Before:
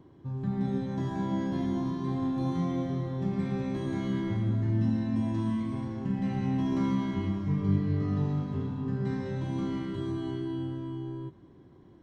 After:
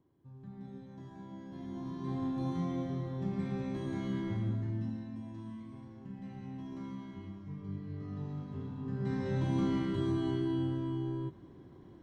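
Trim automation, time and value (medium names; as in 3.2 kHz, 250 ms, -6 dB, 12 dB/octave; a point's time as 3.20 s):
1.43 s -17 dB
2.13 s -5 dB
4.46 s -5 dB
5.21 s -15 dB
7.73 s -15 dB
8.89 s -6.5 dB
9.36 s +1 dB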